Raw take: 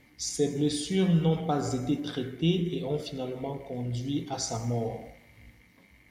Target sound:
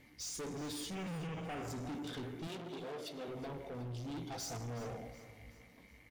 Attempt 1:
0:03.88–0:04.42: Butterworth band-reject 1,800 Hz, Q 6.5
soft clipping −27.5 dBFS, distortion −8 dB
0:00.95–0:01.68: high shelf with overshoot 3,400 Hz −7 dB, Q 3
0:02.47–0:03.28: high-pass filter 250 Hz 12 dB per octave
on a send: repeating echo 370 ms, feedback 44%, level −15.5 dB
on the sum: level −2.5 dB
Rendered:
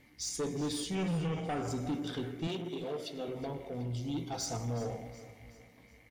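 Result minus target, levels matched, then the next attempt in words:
soft clipping: distortion −5 dB
0:03.88–0:04.42: Butterworth band-reject 1,800 Hz, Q 6.5
soft clipping −38 dBFS, distortion −3 dB
0:00.95–0:01.68: high shelf with overshoot 3,400 Hz −7 dB, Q 3
0:02.47–0:03.28: high-pass filter 250 Hz 12 dB per octave
on a send: repeating echo 370 ms, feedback 44%, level −15.5 dB
on the sum: level −2.5 dB

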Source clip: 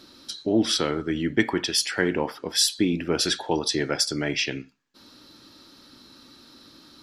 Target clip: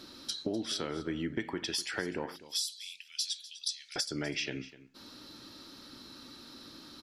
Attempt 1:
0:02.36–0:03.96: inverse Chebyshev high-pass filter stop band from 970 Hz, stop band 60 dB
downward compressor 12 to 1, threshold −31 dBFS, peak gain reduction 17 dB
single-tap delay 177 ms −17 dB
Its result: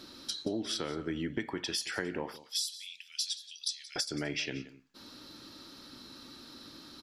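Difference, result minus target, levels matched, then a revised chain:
echo 73 ms early
0:02.36–0:03.96: inverse Chebyshev high-pass filter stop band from 970 Hz, stop band 60 dB
downward compressor 12 to 1, threshold −31 dBFS, peak gain reduction 17 dB
single-tap delay 250 ms −17 dB

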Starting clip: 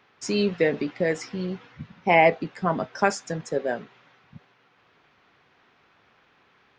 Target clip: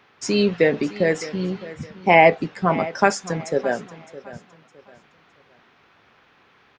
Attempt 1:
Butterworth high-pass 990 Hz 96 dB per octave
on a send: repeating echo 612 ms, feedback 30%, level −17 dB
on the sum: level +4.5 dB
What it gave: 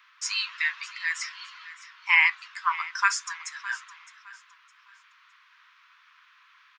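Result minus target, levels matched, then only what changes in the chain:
1,000 Hz band −4.0 dB
remove: Butterworth high-pass 990 Hz 96 dB per octave

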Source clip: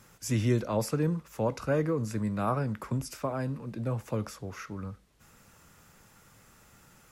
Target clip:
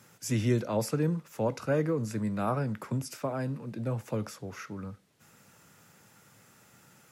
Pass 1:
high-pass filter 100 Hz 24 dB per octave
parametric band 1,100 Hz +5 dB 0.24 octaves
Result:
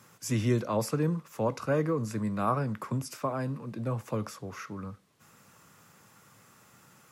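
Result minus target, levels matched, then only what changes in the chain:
1,000 Hz band +3.0 dB
change: parametric band 1,100 Hz −4 dB 0.24 octaves

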